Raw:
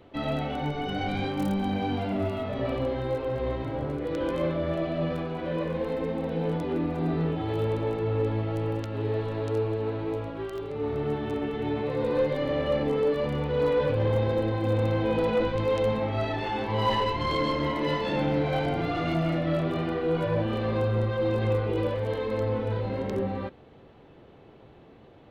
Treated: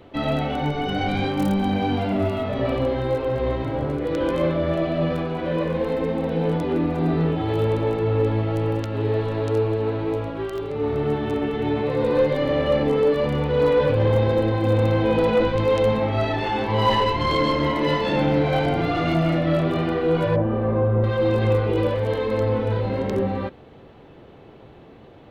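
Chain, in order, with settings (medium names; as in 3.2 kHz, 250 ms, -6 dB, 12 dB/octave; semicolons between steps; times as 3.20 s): 20.36–21.04 s: low-pass 1.2 kHz 12 dB/octave; trim +6 dB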